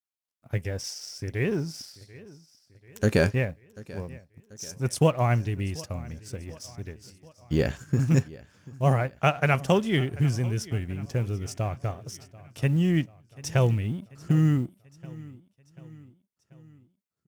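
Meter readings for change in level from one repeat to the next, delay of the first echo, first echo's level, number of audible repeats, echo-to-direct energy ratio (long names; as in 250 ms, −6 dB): −5.5 dB, 738 ms, −20.5 dB, 3, −19.0 dB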